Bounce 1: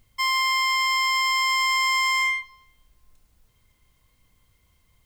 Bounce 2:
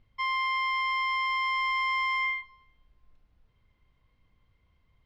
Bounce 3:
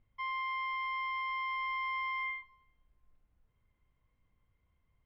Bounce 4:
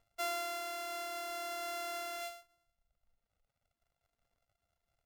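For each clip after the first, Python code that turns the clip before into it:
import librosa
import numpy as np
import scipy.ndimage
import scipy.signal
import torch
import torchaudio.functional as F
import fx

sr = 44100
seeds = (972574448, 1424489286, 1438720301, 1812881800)

y1 = fx.air_absorb(x, sr, metres=290.0)
y1 = F.gain(torch.from_numpy(y1), -3.0).numpy()
y2 = scipy.signal.sosfilt(scipy.signal.butter(2, 2700.0, 'lowpass', fs=sr, output='sos'), y1)
y2 = F.gain(torch.from_numpy(y2), -7.0).numpy()
y3 = np.r_[np.sort(y2[:len(y2) // 64 * 64].reshape(-1, 64), axis=1).ravel(), y2[len(y2) // 64 * 64:]]
y3 = fx.dereverb_blind(y3, sr, rt60_s=1.6)
y3 = fx.low_shelf(y3, sr, hz=290.0, db=-11.5)
y3 = F.gain(torch.from_numpy(y3), 2.5).numpy()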